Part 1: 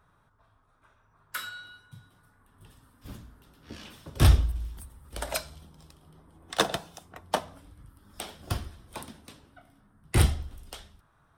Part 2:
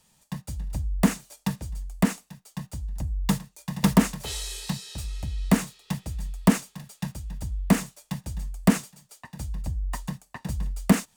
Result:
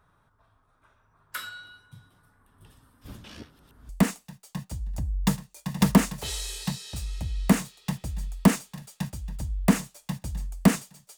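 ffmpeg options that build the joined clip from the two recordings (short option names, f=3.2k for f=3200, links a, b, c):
-filter_complex "[0:a]apad=whole_dur=11.17,atrim=end=11.17,asplit=2[a][b];[a]atrim=end=3.242[c];[b]atrim=start=3.238:end=3.892,asetpts=PTS-STARTPTS,areverse[d];[1:a]atrim=start=1.908:end=9.19[e];[c][d]acrossfade=d=0.004:c1=hsin:c2=hsin[f];[f][e]acrossfade=d=0.004:c1=hsin:c2=hsin"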